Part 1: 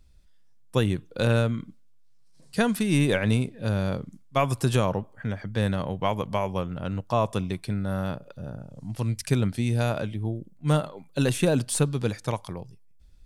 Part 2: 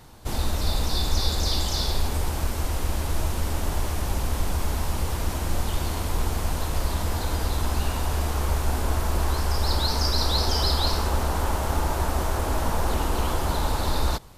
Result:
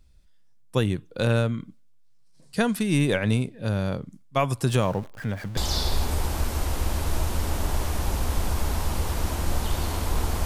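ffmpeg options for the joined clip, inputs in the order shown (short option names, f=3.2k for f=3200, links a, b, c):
-filter_complex "[0:a]asettb=1/sr,asplit=3[a][b][c];[a]atrim=end=4.684[d];[b]atrim=start=4.68:end=5.57,asetpts=PTS-STARTPTS,afade=t=in:d=0.004:c=qsin,afade=t=out:st=0.886:d=0.004:c=qsin,aeval=exprs='val(0)+0.5*0.0119*sgn(val(0))':c=same[e];[c]atrim=start=5.566[f];[d][e]acrossfade=d=0.004:c1=hsin:c2=qsin[g];[g][f]acrossfade=d=0.004:c1=qsin:c2=hsin,apad=whole_dur=10.45,atrim=end=10.45,atrim=end=5.572[h];[1:a]atrim=start=1.598:end=6.48[i];[h][i]acrossfade=d=0.004:c1=hsin:c2=hsin"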